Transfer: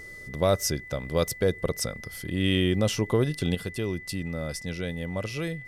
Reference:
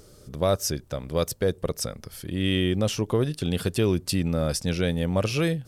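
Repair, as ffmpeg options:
ffmpeg -i in.wav -af "bandreject=frequency=2000:width=30,agate=range=-21dB:threshold=-35dB,asetnsamples=nb_out_samples=441:pad=0,asendcmd='3.55 volume volume 7.5dB',volume=0dB" out.wav

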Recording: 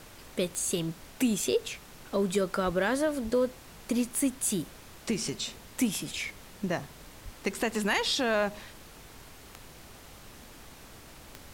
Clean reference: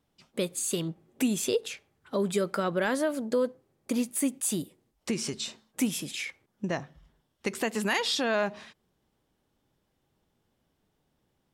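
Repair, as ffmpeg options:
ffmpeg -i in.wav -filter_complex "[0:a]adeclick=threshold=4,asplit=3[link_01][link_02][link_03];[link_01]afade=type=out:start_time=2.65:duration=0.02[link_04];[link_02]highpass=frequency=140:width=0.5412,highpass=frequency=140:width=1.3066,afade=type=in:start_time=2.65:duration=0.02,afade=type=out:start_time=2.77:duration=0.02[link_05];[link_03]afade=type=in:start_time=2.77:duration=0.02[link_06];[link_04][link_05][link_06]amix=inputs=3:normalize=0,asplit=3[link_07][link_08][link_09];[link_07]afade=type=out:start_time=3.23:duration=0.02[link_10];[link_08]highpass=frequency=140:width=0.5412,highpass=frequency=140:width=1.3066,afade=type=in:start_time=3.23:duration=0.02,afade=type=out:start_time=3.35:duration=0.02[link_11];[link_09]afade=type=in:start_time=3.35:duration=0.02[link_12];[link_10][link_11][link_12]amix=inputs=3:normalize=0,asplit=3[link_13][link_14][link_15];[link_13]afade=type=out:start_time=7.24:duration=0.02[link_16];[link_14]highpass=frequency=140:width=0.5412,highpass=frequency=140:width=1.3066,afade=type=in:start_time=7.24:duration=0.02,afade=type=out:start_time=7.36:duration=0.02[link_17];[link_15]afade=type=in:start_time=7.36:duration=0.02[link_18];[link_16][link_17][link_18]amix=inputs=3:normalize=0,afftdn=noise_reduction=25:noise_floor=-50" out.wav

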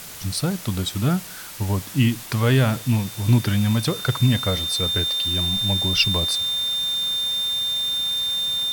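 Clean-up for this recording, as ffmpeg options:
ffmpeg -i in.wav -af "bandreject=frequency=3600:width=30,afwtdn=0.014" out.wav

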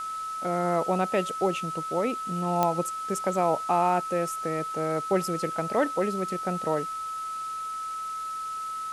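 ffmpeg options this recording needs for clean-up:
ffmpeg -i in.wav -af "adeclick=threshold=4,bandreject=frequency=1300:width=30,afwtdn=0.0045" out.wav

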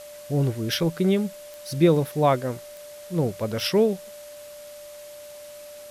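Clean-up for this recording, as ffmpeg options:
ffmpeg -i in.wav -af "adeclick=threshold=4,bandreject=frequency=590:width=30,afwtdn=0.0045" out.wav

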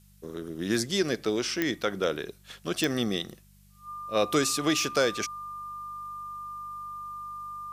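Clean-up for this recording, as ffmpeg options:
ffmpeg -i in.wav -af "adeclick=threshold=4,bandreject=frequency=49.3:width_type=h:width=4,bandreject=frequency=98.6:width_type=h:width=4,bandreject=frequency=147.9:width_type=h:width=4,bandreject=frequency=197.2:width_type=h:width=4,bandreject=frequency=1200:width=30,agate=range=-21dB:threshold=-47dB" out.wav

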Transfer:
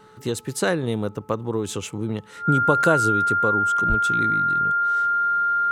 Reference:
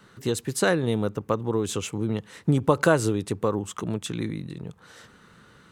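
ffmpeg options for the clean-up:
ffmpeg -i in.wav -filter_complex "[0:a]bandreject=frequency=432:width_type=h:width=4,bandreject=frequency=864:width_type=h:width=4,bandreject=frequency=1296:width_type=h:width=4,bandreject=frequency=1400:width=30,asplit=3[link_01][link_02][link_03];[link_01]afade=type=out:start_time=3.88:duration=0.02[link_04];[link_02]highpass=frequency=140:width=0.5412,highpass=frequency=140:width=1.3066,afade=type=in:start_time=3.88:duration=0.02,afade=type=out:start_time=4:duration=0.02[link_05];[link_03]afade=type=in:start_time=4:duration=0.02[link_06];[link_04][link_05][link_06]amix=inputs=3:normalize=0" out.wav

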